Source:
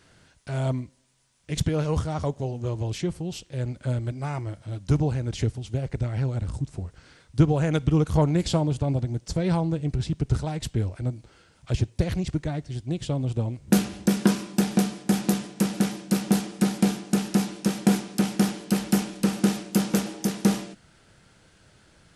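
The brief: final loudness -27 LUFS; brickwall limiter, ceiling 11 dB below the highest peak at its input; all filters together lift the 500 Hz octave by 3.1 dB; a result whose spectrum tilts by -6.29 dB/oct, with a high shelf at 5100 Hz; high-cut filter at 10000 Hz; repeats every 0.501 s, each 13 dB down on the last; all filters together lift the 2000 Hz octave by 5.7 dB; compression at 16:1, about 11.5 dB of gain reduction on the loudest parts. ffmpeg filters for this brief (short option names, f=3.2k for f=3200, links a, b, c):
-af "lowpass=10k,equalizer=f=500:t=o:g=3.5,equalizer=f=2k:t=o:g=8.5,highshelf=f=5.1k:g=-8.5,acompressor=threshold=-25dB:ratio=16,alimiter=limit=-22dB:level=0:latency=1,aecho=1:1:501|1002|1503:0.224|0.0493|0.0108,volume=6.5dB"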